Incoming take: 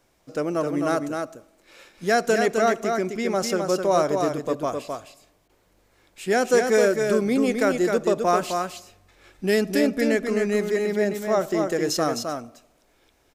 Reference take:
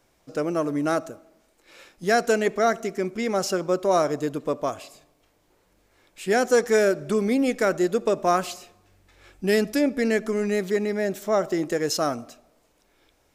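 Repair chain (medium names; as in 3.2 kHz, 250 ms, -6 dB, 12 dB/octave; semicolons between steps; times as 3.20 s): clip repair -10 dBFS; interpolate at 5.48 s, 13 ms; inverse comb 260 ms -5 dB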